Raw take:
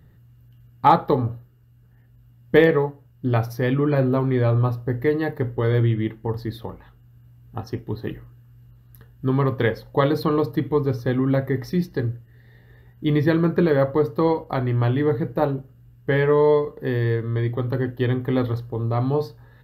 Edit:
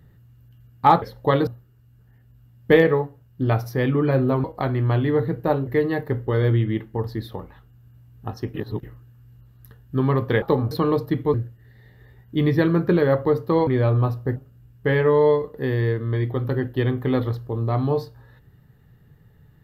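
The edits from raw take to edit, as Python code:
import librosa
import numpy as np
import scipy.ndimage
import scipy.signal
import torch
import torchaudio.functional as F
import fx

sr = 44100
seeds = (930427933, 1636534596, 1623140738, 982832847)

y = fx.edit(x, sr, fx.swap(start_s=1.02, length_s=0.29, other_s=9.72, other_length_s=0.45),
    fx.swap(start_s=4.28, length_s=0.69, other_s=14.36, other_length_s=1.23),
    fx.reverse_span(start_s=7.84, length_s=0.29),
    fx.cut(start_s=10.8, length_s=1.23), tone=tone)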